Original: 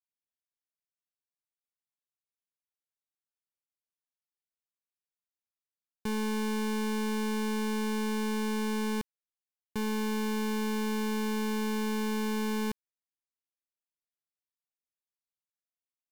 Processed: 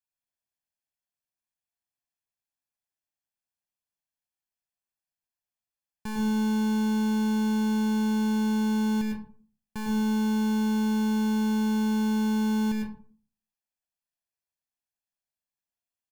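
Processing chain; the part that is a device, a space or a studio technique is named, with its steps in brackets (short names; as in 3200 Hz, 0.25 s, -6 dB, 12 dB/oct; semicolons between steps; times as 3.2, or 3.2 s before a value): microphone above a desk (comb 1.2 ms, depth 54%; reverb RT60 0.45 s, pre-delay 98 ms, DRR 0.5 dB); notch 3800 Hz, Q 8.9; gain -2.5 dB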